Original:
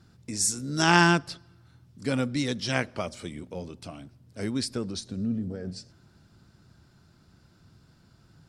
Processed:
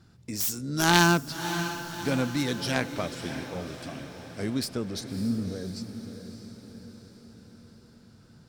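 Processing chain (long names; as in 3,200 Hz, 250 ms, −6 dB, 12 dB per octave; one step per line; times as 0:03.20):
phase distortion by the signal itself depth 0.17 ms
feedback delay with all-pass diffusion 604 ms, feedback 55%, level −10 dB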